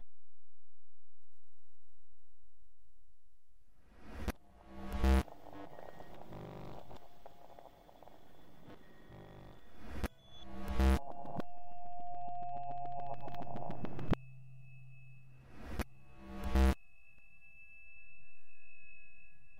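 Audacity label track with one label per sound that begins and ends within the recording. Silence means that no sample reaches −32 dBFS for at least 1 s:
4.240000	5.220000	sound
9.960000	14.140000	sound
15.750000	16.730000	sound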